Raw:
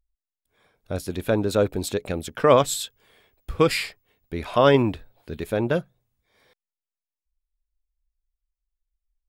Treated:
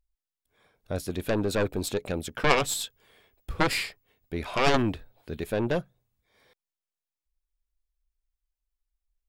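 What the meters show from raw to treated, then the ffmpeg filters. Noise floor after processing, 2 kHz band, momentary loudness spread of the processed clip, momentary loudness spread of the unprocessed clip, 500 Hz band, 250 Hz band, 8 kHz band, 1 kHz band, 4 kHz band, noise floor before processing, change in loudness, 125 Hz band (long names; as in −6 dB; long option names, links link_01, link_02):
below −85 dBFS, +0.5 dB, 14 LU, 18 LU, −7.5 dB, −4.5 dB, −2.0 dB, −4.0 dB, −1.5 dB, below −85 dBFS, −5.5 dB, −5.0 dB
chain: -af "aeval=exprs='0.668*(cos(1*acos(clip(val(0)/0.668,-1,1)))-cos(1*PI/2))+0.299*(cos(3*acos(clip(val(0)/0.668,-1,1)))-cos(3*PI/2))+0.133*(cos(4*acos(clip(val(0)/0.668,-1,1)))-cos(4*PI/2))+0.0841*(cos(7*acos(clip(val(0)/0.668,-1,1)))-cos(7*PI/2))':channel_layout=same,volume=-3.5dB"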